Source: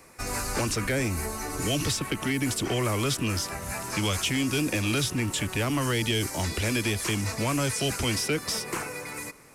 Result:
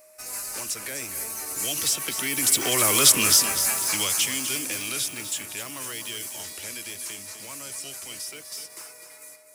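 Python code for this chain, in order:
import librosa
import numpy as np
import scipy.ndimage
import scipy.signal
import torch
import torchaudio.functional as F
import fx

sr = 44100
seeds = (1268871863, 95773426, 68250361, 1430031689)

y = fx.doppler_pass(x, sr, speed_mps=6, closest_m=2.6, pass_at_s=3.12)
y = fx.riaa(y, sr, side='recording')
y = y + 10.0 ** (-58.0 / 20.0) * np.sin(2.0 * np.pi * 620.0 * np.arange(len(y)) / sr)
y = fx.echo_feedback(y, sr, ms=251, feedback_pct=42, wet_db=-10)
y = F.gain(torch.from_numpy(y), 5.5).numpy()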